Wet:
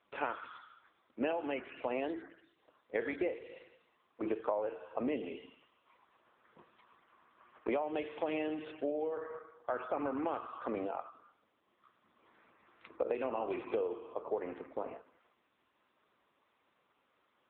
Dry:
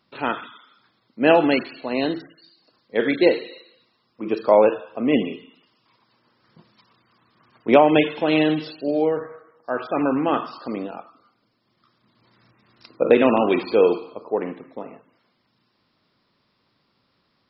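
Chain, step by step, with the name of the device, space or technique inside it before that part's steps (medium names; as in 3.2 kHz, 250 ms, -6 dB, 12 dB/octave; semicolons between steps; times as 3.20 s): voicemail (band-pass 380–2800 Hz; compression 10:1, threshold -31 dBFS, peak gain reduction 21 dB; AMR-NB 6.7 kbps 8 kHz)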